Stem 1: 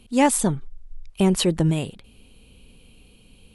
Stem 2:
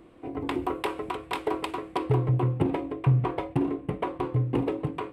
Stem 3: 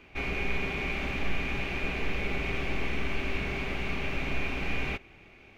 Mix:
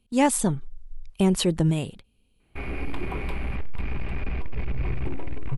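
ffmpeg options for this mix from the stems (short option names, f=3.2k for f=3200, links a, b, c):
-filter_complex "[0:a]volume=-3dB[a];[1:a]adelay=2450,volume=1.5dB,afade=t=out:st=3.21:d=0.22:silence=0.237137,afade=t=in:st=4.68:d=0.25:silence=0.354813[b];[2:a]lowpass=2k,asubboost=boost=4:cutoff=200,asoftclip=type=tanh:threshold=-24dB,adelay=2400,volume=0dB[c];[a][b][c]amix=inputs=3:normalize=0,agate=range=-15dB:threshold=-45dB:ratio=16:detection=peak,lowshelf=f=150:g=3.5"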